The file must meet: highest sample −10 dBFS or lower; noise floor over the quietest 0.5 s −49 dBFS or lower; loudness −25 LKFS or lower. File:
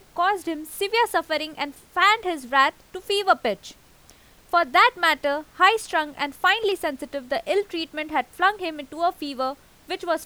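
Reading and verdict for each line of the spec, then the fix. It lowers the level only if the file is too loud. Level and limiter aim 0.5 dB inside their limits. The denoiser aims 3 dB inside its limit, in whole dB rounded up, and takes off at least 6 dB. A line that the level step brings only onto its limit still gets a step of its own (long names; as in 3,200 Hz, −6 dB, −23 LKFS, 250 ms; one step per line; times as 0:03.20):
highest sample −5.0 dBFS: out of spec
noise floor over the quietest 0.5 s −53 dBFS: in spec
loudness −23.0 LKFS: out of spec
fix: level −2.5 dB
brickwall limiter −10.5 dBFS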